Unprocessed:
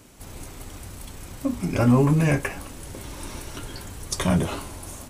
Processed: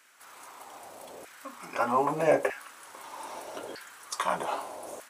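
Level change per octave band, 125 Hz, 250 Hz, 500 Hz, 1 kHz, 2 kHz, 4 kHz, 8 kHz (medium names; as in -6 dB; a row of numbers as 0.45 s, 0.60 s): -24.0 dB, -16.0 dB, -0.5 dB, +3.5 dB, -3.5 dB, -7.0 dB, -8.0 dB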